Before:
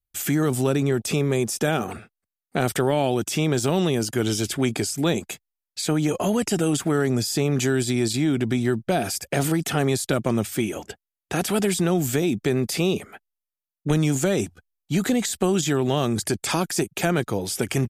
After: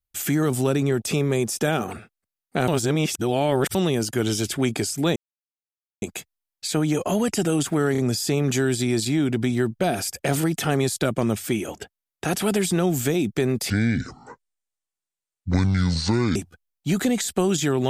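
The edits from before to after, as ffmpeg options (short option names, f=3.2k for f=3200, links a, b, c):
-filter_complex "[0:a]asplit=8[a][b][c][d][e][f][g][h];[a]atrim=end=2.682[i];[b]atrim=start=2.678:end=3.752,asetpts=PTS-STARTPTS,areverse[j];[c]atrim=start=3.748:end=5.16,asetpts=PTS-STARTPTS,afade=t=out:st=1.408:d=0.004:c=hsin,apad=pad_dur=0.86[k];[d]atrim=start=5.16:end=7.092,asetpts=PTS-STARTPTS,afade=t=in:d=0.004:c=hsin[l];[e]atrim=start=7.058:end=7.092[m];[f]atrim=start=7.058:end=12.784[n];[g]atrim=start=12.78:end=14.4,asetpts=PTS-STARTPTS,asetrate=26901,aresample=44100,atrim=end_sample=117118,asetpts=PTS-STARTPTS[o];[h]atrim=start=14.396[p];[i][j]acrossfade=d=0.004:c1=hsin:c2=hsin[q];[k][l]concat=n=2:v=0:a=1[r];[q][r]acrossfade=d=0.004:c1=hsin:c2=hsin[s];[s][m]acrossfade=d=0.004:c1=hsin:c2=hsin[t];[t][n]acrossfade=d=0.004:c1=hsin:c2=hsin[u];[u][o]acrossfade=d=0.004:c1=hsin:c2=hsin[v];[v][p]acrossfade=d=0.004:c1=hsin:c2=hsin"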